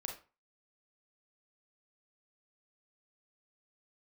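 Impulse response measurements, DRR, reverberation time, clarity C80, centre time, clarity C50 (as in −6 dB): 1.5 dB, 0.35 s, 13.0 dB, 23 ms, 6.5 dB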